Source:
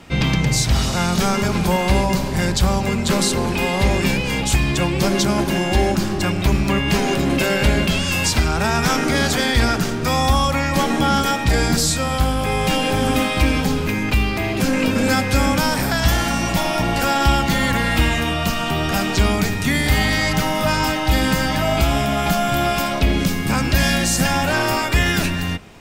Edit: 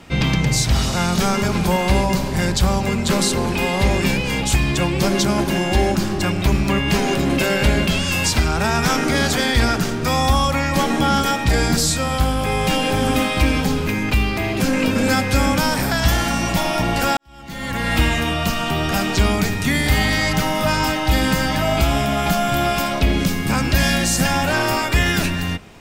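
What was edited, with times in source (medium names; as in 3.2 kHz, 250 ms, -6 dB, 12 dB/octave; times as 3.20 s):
17.17–17.94 s: fade in quadratic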